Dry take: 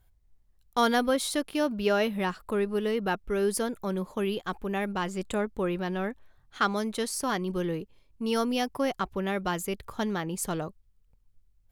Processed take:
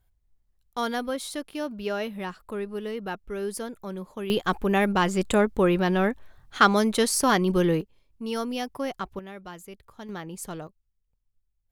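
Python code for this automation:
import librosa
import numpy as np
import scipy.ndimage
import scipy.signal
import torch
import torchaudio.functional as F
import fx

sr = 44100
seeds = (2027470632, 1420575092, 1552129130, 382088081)

y = fx.gain(x, sr, db=fx.steps((0.0, -4.5), (4.3, 8.0), (7.81, -2.5), (9.19, -11.5), (10.09, -5.0), (10.67, -11.5)))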